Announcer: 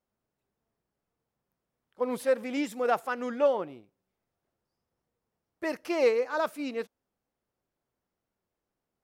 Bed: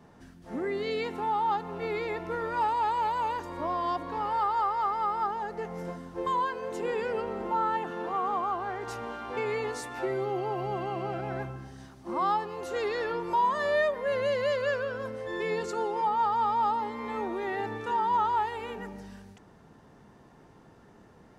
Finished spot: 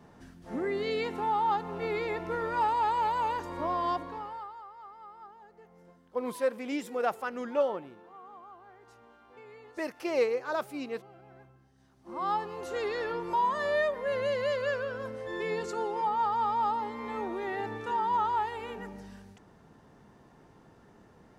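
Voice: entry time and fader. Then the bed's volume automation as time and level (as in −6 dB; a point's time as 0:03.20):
4.15 s, −3.0 dB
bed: 0:03.94 0 dB
0:04.62 −20 dB
0:11.73 −20 dB
0:12.34 −2 dB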